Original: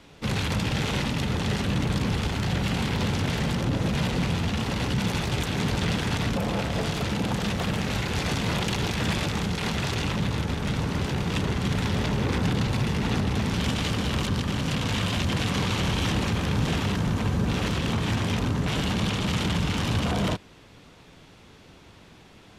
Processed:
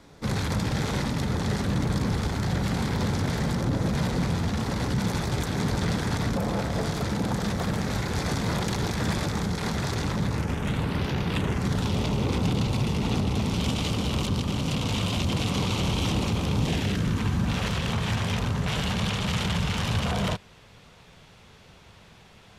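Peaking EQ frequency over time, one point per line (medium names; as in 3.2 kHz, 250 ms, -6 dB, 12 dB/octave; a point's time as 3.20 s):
peaking EQ -10.5 dB 0.54 oct
10.25 s 2.8 kHz
11.18 s 9 kHz
11.91 s 1.7 kHz
16.59 s 1.7 kHz
17.66 s 300 Hz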